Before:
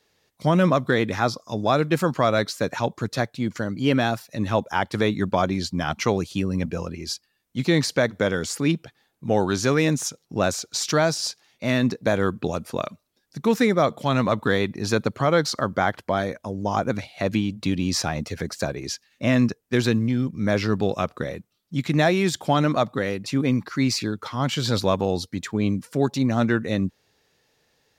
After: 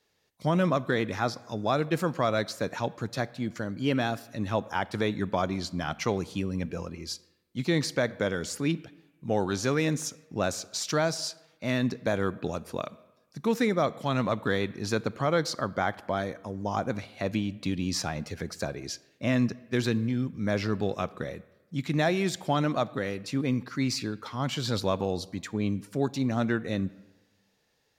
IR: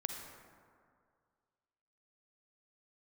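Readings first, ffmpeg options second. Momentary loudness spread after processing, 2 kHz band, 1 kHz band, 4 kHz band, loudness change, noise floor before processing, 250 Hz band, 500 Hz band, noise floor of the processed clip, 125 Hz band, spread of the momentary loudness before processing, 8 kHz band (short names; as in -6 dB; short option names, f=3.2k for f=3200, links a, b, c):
9 LU, -6.0 dB, -6.0 dB, -6.0 dB, -6.0 dB, -70 dBFS, -6.0 dB, -6.0 dB, -69 dBFS, -6.0 dB, 9 LU, -6.0 dB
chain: -filter_complex "[0:a]asplit=2[a][b];[1:a]atrim=start_sample=2205,asetrate=83790,aresample=44100[c];[b][c]afir=irnorm=-1:irlink=0,volume=-8dB[d];[a][d]amix=inputs=2:normalize=0,volume=-7.5dB"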